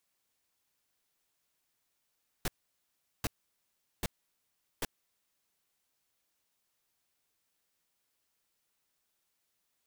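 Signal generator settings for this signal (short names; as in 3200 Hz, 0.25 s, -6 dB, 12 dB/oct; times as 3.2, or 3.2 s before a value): noise bursts pink, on 0.03 s, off 0.76 s, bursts 4, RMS -32 dBFS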